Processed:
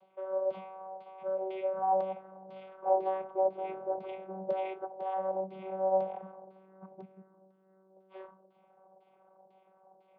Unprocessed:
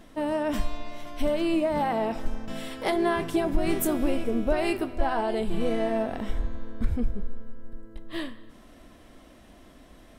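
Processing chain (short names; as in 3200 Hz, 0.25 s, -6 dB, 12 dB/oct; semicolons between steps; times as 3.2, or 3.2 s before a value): vowel filter a; LFO low-pass saw down 2 Hz 530–4300 Hz; vocoder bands 16, saw 190 Hz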